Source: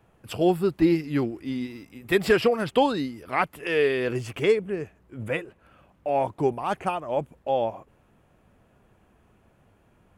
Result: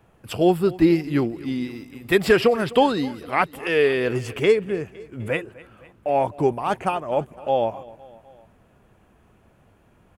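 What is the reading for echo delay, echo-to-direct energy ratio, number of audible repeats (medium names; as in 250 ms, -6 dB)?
254 ms, -19.0 dB, 3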